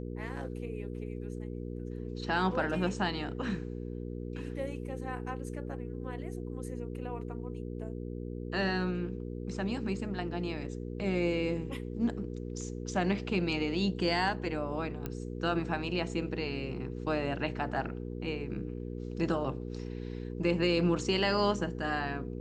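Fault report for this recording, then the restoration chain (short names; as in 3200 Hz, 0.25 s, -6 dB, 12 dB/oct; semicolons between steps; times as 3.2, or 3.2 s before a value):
hum 60 Hz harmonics 8 -39 dBFS
15.06 pop -22 dBFS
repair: de-click; de-hum 60 Hz, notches 8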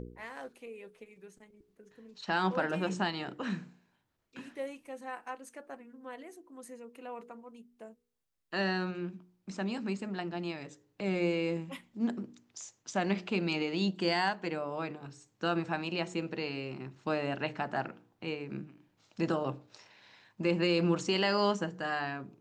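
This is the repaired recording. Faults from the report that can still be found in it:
15.06 pop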